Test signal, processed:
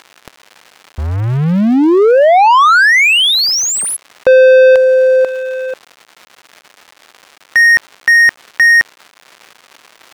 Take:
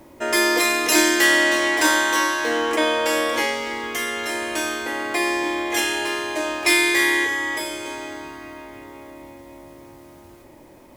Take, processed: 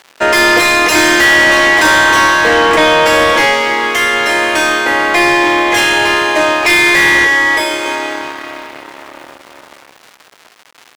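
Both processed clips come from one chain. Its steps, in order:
dead-zone distortion −39 dBFS
surface crackle 300 per second −42 dBFS
mid-hump overdrive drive 25 dB, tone 2,400 Hz, clips at −2.5 dBFS
level +3 dB

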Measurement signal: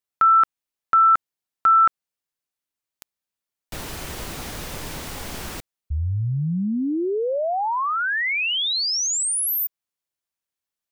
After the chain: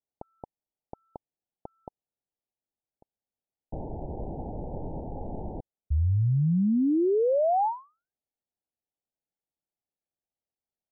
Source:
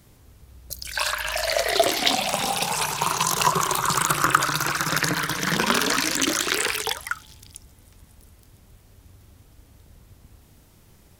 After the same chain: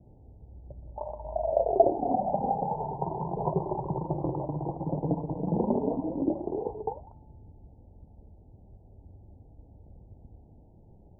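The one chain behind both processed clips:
Butterworth low-pass 880 Hz 96 dB per octave

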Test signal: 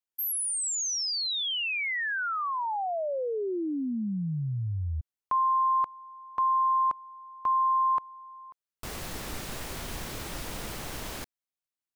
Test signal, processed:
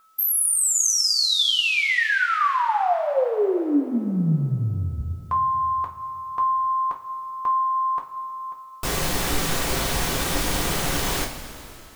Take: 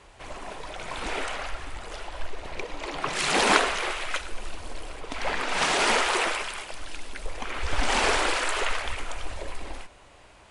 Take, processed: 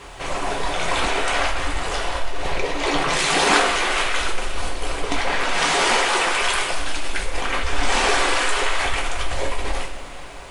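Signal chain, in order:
in parallel at +1 dB: compressor whose output falls as the input rises −33 dBFS, ratio −0.5
on the sum: steady tone 1,300 Hz −55 dBFS
bit-depth reduction 12 bits, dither triangular
coupled-rooms reverb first 0.27 s, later 3.1 s, from −17 dB, DRR 0 dB
level +1 dB

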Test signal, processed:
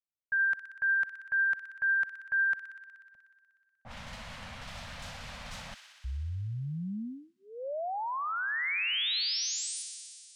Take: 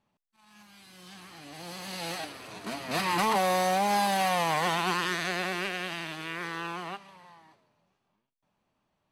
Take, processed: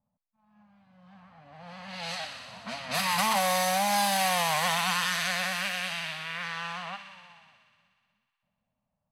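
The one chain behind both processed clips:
low-shelf EQ 120 Hz +10 dB
low-pass that shuts in the quiet parts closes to 580 Hz, open at −27.5 dBFS
Chebyshev band-stop filter 230–560 Hz, order 2
spectral tilt +2 dB per octave
on a send: delay with a high-pass on its return 61 ms, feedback 82%, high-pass 1,800 Hz, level −8 dB

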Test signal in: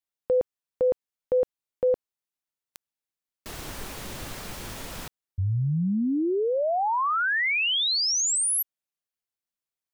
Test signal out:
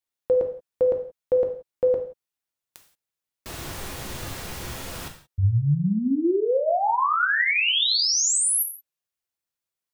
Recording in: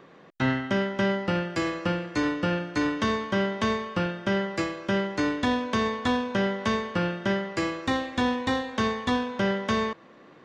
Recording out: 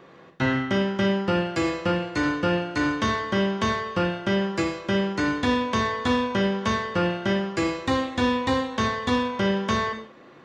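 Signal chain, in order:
reverb whose tail is shaped and stops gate 200 ms falling, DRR 3 dB
level +1 dB

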